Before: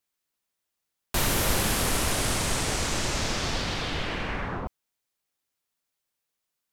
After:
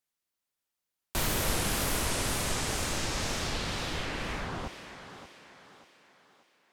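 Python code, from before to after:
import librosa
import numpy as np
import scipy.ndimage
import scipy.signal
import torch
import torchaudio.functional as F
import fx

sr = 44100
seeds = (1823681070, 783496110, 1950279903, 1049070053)

y = fx.echo_thinned(x, sr, ms=586, feedback_pct=44, hz=180.0, wet_db=-10)
y = fx.wow_flutter(y, sr, seeds[0], rate_hz=2.1, depth_cents=150.0)
y = y * 10.0 ** (-4.5 / 20.0)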